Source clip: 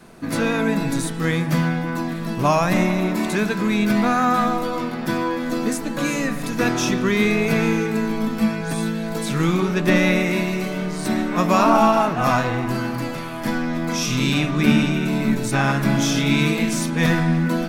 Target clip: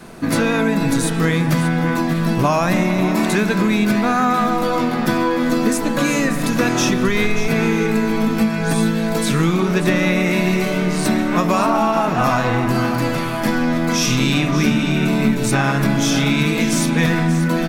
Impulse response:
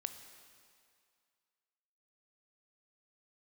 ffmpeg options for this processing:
-filter_complex "[0:a]asplit=3[s0][s1][s2];[s0]afade=t=out:st=7.07:d=0.02[s3];[s1]asubboost=boost=8:cutoff=72,afade=t=in:st=7.07:d=0.02,afade=t=out:st=7.47:d=0.02[s4];[s2]afade=t=in:st=7.47:d=0.02[s5];[s3][s4][s5]amix=inputs=3:normalize=0,acompressor=threshold=0.0891:ratio=6,asplit=2[s6][s7];[s7]aecho=0:1:585:0.251[s8];[s6][s8]amix=inputs=2:normalize=0,volume=2.37"

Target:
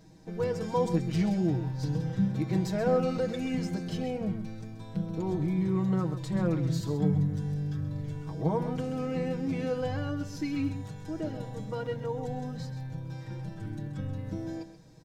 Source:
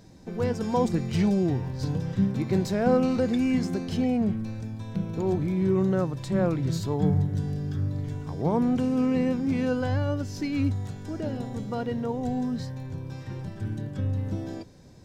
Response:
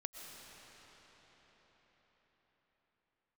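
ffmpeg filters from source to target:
-af "aecho=1:1:6.3:0.78,aecho=1:1:131:0.282,volume=0.501"

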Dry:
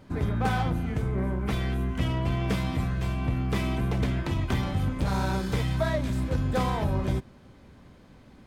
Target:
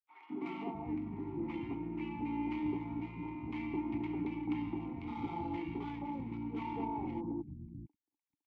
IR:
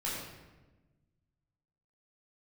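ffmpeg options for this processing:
-filter_complex "[0:a]aeval=exprs='sgn(val(0))*max(abs(val(0))-0.00708,0)':c=same,adynamicsmooth=sensitivity=4.5:basefreq=3300,asetrate=39289,aresample=44100,atempo=1.12246,asplit=3[s0][s1][s2];[s0]bandpass=f=300:t=q:w=8,volume=1[s3];[s1]bandpass=f=870:t=q:w=8,volume=0.501[s4];[s2]bandpass=f=2240:t=q:w=8,volume=0.355[s5];[s3][s4][s5]amix=inputs=3:normalize=0,acrossover=split=190|950[s6][s7][s8];[s7]adelay=210[s9];[s6]adelay=650[s10];[s10][s9][s8]amix=inputs=3:normalize=0,volume=2"

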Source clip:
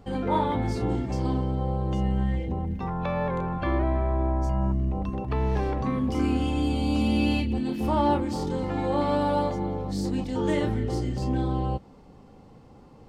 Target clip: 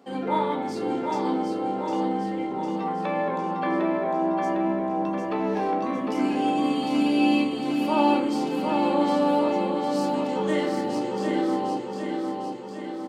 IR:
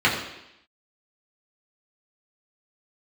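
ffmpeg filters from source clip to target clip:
-filter_complex "[0:a]highpass=f=240:w=0.5412,highpass=f=240:w=1.3066,aecho=1:1:754|1508|2262|3016|3770|4524|5278|6032:0.596|0.345|0.2|0.116|0.0674|0.0391|0.0227|0.0132,asplit=2[s0][s1];[1:a]atrim=start_sample=2205,lowshelf=f=160:g=8.5,adelay=14[s2];[s1][s2]afir=irnorm=-1:irlink=0,volume=0.0708[s3];[s0][s3]amix=inputs=2:normalize=0"

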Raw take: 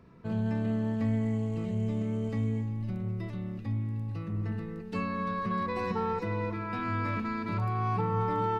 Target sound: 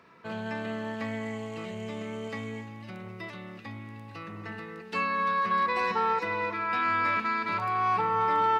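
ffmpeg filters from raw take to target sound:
-af "highpass=f=670:p=1,equalizer=f=2000:w=0.37:g=7.5,volume=1.41"

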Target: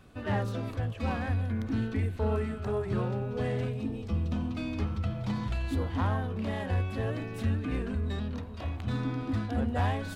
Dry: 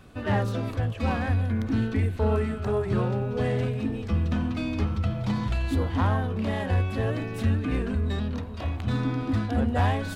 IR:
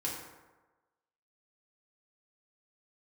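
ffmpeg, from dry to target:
-filter_complex "[0:a]asettb=1/sr,asplit=3[s0][s1][s2];[s0]atrim=end=3.734[s3];[s1]atrim=start=3.73:end=4.57,asetpts=PTS-STARTPTS,afade=t=in:d=0.004:c=qsin,afade=t=out:st=0.836:d=0.004:c=qsin,equalizer=f=1700:t=o:w=0.75:g=-8[s4];[s2]atrim=start=4.566[s5];[s3][s4]acrossfade=d=0.004:c1=hsin:c2=qsin[s6];[s6][s5]acrossfade=d=0.004:c1=qsin:c2=hsin,volume=0.562"

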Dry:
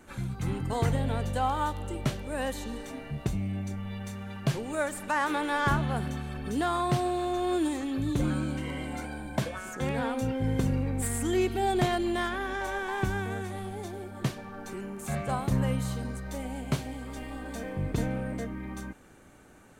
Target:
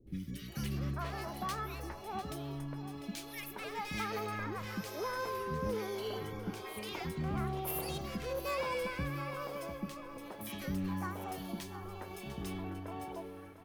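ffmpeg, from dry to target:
-filter_complex "[0:a]asetrate=63945,aresample=44100,acrossover=split=1100[s0][s1];[s0]aeval=exprs='val(0)*(1-0.7/2+0.7/2*cos(2*PI*1.1*n/s))':c=same[s2];[s1]aeval=exprs='val(0)*(1-0.7/2-0.7/2*cos(2*PI*1.1*n/s))':c=same[s3];[s2][s3]amix=inputs=2:normalize=0,asplit=2[s4][s5];[s5]aecho=0:1:699|1398|2097:0.224|0.0694|0.0215[s6];[s4][s6]amix=inputs=2:normalize=0,volume=23.7,asoftclip=hard,volume=0.0422,acrossover=split=360|1800[s7][s8][s9];[s9]adelay=70[s10];[s8]adelay=480[s11];[s7][s11][s10]amix=inputs=3:normalize=0,volume=0.708"

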